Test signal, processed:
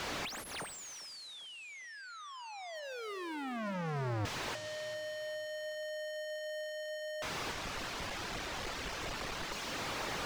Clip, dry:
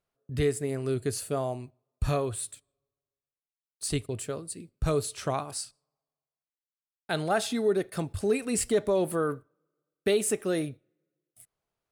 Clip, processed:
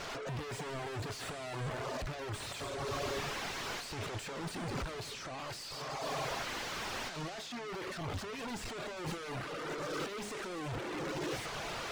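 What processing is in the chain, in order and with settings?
infinite clipping; reverb removal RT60 0.83 s; LPF 6700 Hz 24 dB/oct; low shelf 430 Hz -9.5 dB; de-hum 208.3 Hz, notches 3; in parallel at -0.5 dB: limiter -37 dBFS; on the sum: negative-ratio compressor -39 dBFS, ratio -0.5; on a send: tape echo 0.402 s, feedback 49%, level -19 dB, low-pass 3200 Hz; on the sum: Schroeder reverb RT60 3 s, combs from 33 ms, DRR 17 dB; slew limiter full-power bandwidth 23 Hz; gain +2.5 dB

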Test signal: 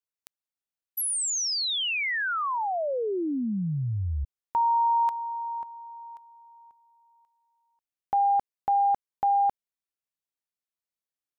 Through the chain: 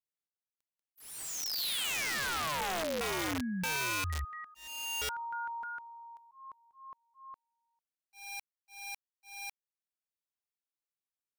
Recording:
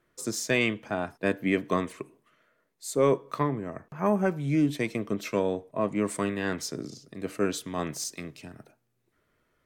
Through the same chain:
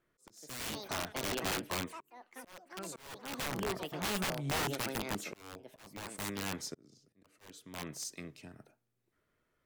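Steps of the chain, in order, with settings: echoes that change speed 0.227 s, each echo +5 st, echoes 3, each echo -6 dB; wrapped overs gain 21.5 dB; auto swell 0.669 s; gain -7 dB

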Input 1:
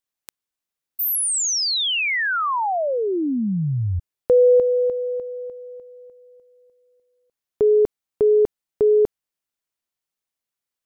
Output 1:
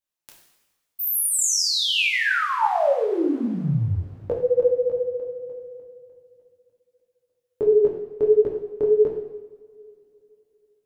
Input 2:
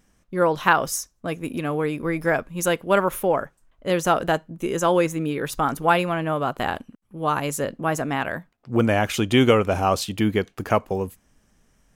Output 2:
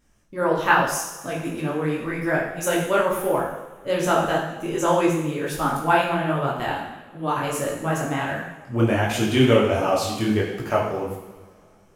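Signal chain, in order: two-slope reverb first 0.93 s, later 3.5 s, from -22 dB, DRR -1 dB; detuned doubles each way 49 cents

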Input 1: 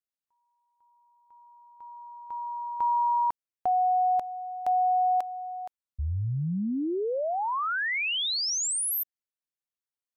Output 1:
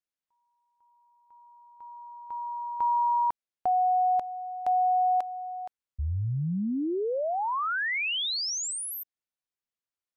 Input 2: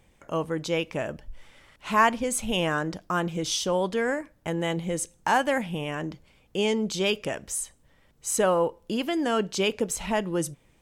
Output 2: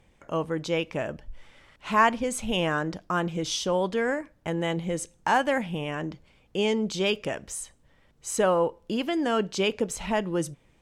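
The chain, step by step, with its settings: high shelf 9700 Hz -11.5 dB

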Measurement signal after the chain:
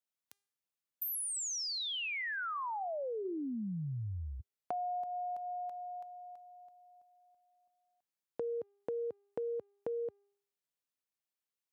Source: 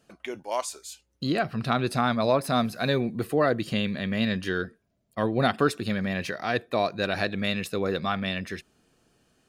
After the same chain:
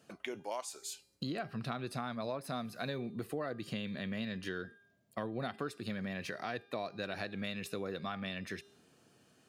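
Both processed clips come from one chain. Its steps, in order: HPF 90 Hz 24 dB/oct; de-hum 402.4 Hz, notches 30; compressor 4:1, threshold -38 dBFS

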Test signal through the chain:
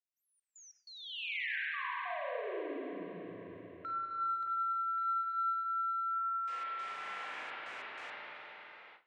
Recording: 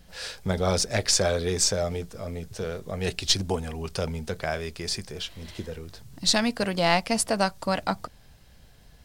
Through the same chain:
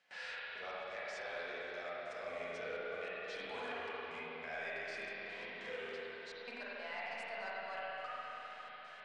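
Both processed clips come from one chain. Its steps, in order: HPF 800 Hz 12 dB/oct; reverse; compressor 10:1, threshold -41 dBFS; reverse; soft clip -38 dBFS; step gate "xxxxx..xx..xxxx" 190 bpm -24 dB; high shelf 3600 Hz -11.5 dB; on a send: dark delay 0.369 s, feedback 51%, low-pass 3800 Hz, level -18 dB; on the sum: spring tank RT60 3.2 s, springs 35/45/49 ms, chirp 60 ms, DRR -8 dB; harmonic-percussive split percussive -4 dB; LPF 8300 Hz 24 dB/oct; gate with hold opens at -55 dBFS; bell 2200 Hz +7.5 dB 1.1 oct; three-band squash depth 40%; gain -2 dB

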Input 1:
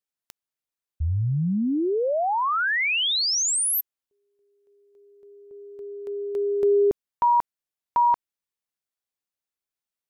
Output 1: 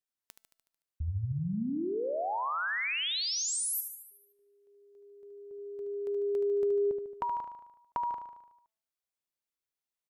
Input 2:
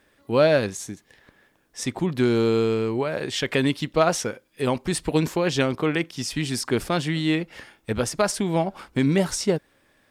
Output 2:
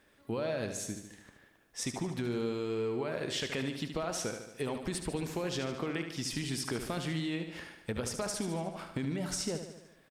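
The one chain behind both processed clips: limiter -15 dBFS; compressor, threshold -28 dBFS; resonator 220 Hz, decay 1 s, mix 40%; feedback echo 74 ms, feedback 58%, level -8 dB

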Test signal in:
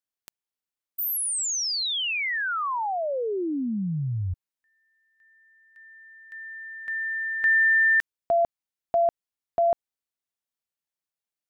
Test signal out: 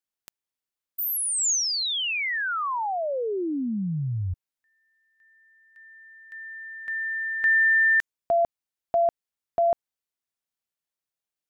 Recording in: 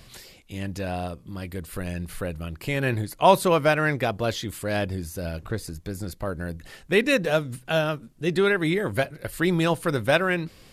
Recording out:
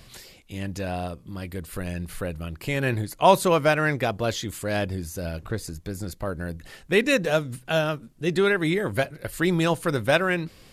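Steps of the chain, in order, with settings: dynamic EQ 6800 Hz, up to +5 dB, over -50 dBFS, Q 3

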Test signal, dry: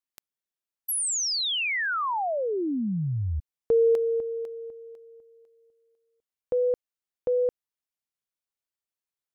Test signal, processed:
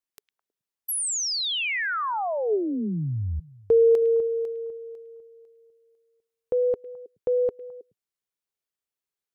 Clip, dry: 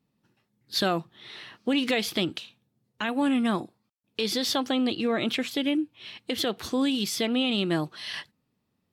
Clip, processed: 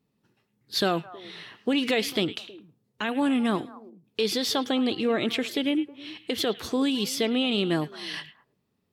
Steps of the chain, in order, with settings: bell 420 Hz +6.5 dB 0.24 oct; delay with a stepping band-pass 0.106 s, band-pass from 2600 Hz, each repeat -1.4 oct, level -11.5 dB

